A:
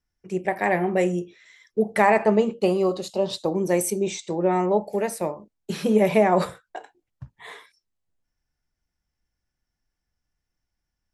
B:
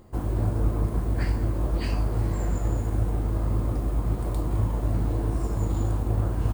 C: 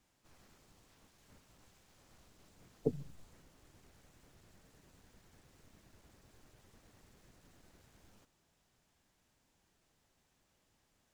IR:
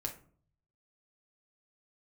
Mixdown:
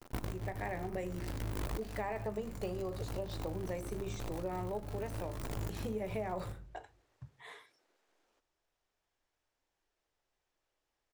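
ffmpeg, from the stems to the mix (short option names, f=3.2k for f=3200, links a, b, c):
-filter_complex "[0:a]bandreject=f=50:t=h:w=6,bandreject=f=100:t=h:w=6,bandreject=f=150:t=h:w=6,bandreject=f=200:t=h:w=6,bandreject=f=250:t=h:w=6,bandreject=f=300:t=h:w=6,bandreject=f=350:t=h:w=6,bandreject=f=400:t=h:w=6,deesser=0.8,volume=-11.5dB,asplit=3[a][b][c];[b]volume=-14.5dB[d];[1:a]acrusher=bits=5:dc=4:mix=0:aa=0.000001,volume=-4dB,asplit=2[e][f];[f]volume=-16.5dB[g];[2:a]highpass=f=340:w=0.5412,highpass=f=340:w=1.3066,highshelf=f=6.5k:g=-11.5,adelay=150,volume=-7dB[h];[c]apad=whole_len=288020[i];[e][i]sidechaincompress=threshold=-51dB:ratio=8:attack=11:release=349[j];[3:a]atrim=start_sample=2205[k];[d][g]amix=inputs=2:normalize=0[l];[l][k]afir=irnorm=-1:irlink=0[m];[a][j][h][m]amix=inputs=4:normalize=0,acompressor=threshold=-36dB:ratio=4"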